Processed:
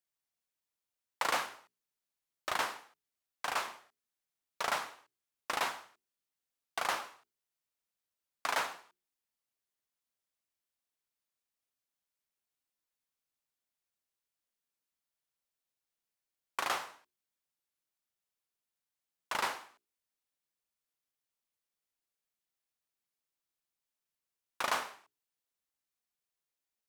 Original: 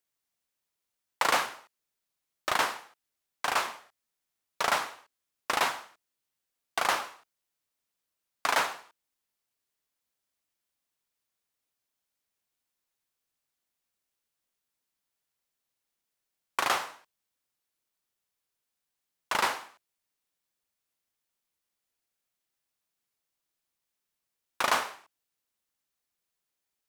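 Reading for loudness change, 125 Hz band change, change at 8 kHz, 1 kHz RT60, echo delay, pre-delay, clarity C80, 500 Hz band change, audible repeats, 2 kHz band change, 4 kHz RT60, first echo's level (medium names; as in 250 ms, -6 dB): -6.5 dB, -7.0 dB, -6.5 dB, no reverb, no echo, no reverb, no reverb, -6.5 dB, no echo, -6.5 dB, no reverb, no echo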